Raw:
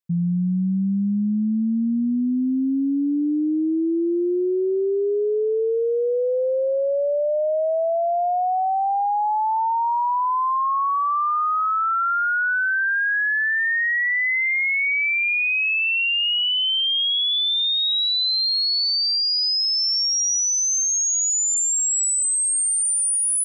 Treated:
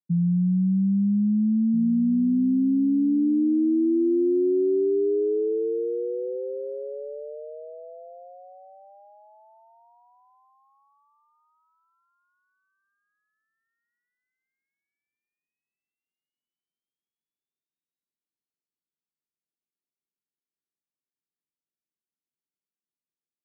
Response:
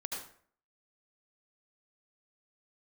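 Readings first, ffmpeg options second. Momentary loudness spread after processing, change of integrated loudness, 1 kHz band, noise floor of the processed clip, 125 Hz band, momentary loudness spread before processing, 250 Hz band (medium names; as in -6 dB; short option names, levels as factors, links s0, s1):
14 LU, -3.5 dB, -33.5 dB, under -85 dBFS, no reading, 4 LU, 0.0 dB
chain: -filter_complex "[0:a]asuperpass=centerf=240:order=8:qfactor=0.82,asplit=2[s0][s1];[s1]adelay=1633,volume=0.224,highshelf=f=4000:g=-36.7[s2];[s0][s2]amix=inputs=2:normalize=0"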